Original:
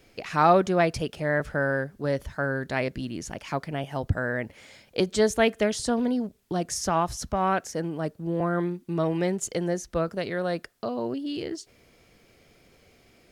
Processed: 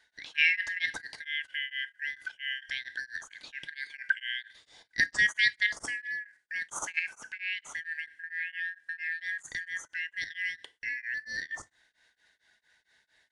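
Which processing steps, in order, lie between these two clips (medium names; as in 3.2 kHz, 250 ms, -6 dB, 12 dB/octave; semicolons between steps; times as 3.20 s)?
four frequency bands reordered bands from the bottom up 4123; level held to a coarse grid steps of 11 dB; on a send at -12.5 dB: reverberation RT60 0.40 s, pre-delay 3 ms; on the sum: resampled via 22.05 kHz; tremolo of two beating tones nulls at 4.4 Hz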